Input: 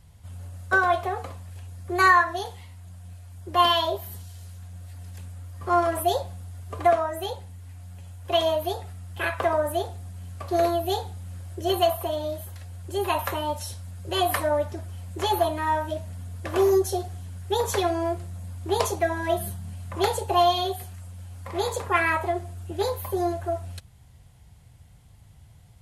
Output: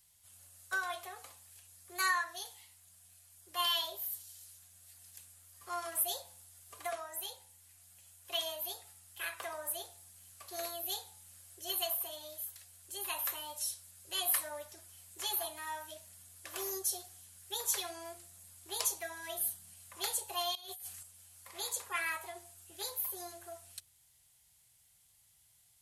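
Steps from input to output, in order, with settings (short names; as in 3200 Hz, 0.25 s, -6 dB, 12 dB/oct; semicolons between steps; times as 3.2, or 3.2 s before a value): pre-emphasis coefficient 0.97; de-hum 86.03 Hz, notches 11; 20.55–21.03 negative-ratio compressor -48 dBFS, ratio -1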